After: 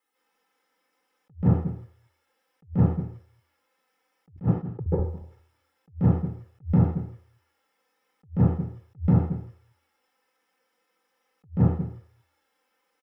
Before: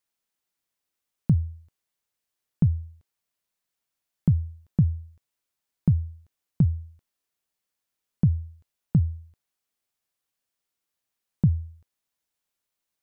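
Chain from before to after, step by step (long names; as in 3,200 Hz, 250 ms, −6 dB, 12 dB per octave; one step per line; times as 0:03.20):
0:04.36–0:04.86: resonant band-pass 510 Hz, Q 1.9
on a send: single-tap delay 219 ms −19 dB
on the sum: flanger swept by the level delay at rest 3.9 ms, full sweep at −21 dBFS
convolution reverb RT60 0.60 s, pre-delay 133 ms, DRR −7.5 dB
in parallel at −8 dB: soft clipping −14 dBFS, distortion −4 dB
on the sum: brickwall limiter −7.5 dBFS, peak gain reduction 10.5 dB
comb filter 2.3 ms, depth 52%
level that may rise only so fast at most 310 dB per second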